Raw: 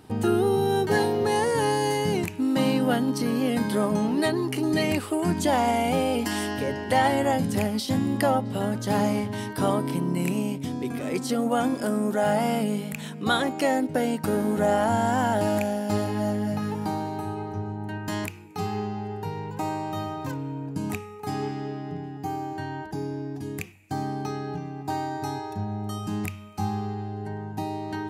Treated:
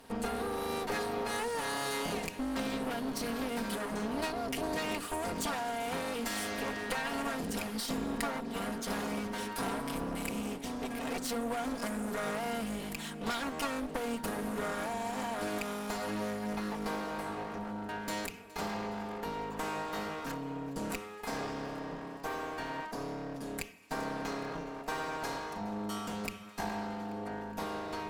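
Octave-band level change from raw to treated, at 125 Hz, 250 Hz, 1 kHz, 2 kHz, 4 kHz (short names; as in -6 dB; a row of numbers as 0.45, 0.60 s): -15.5, -11.5, -9.0, -5.5, -6.0 dB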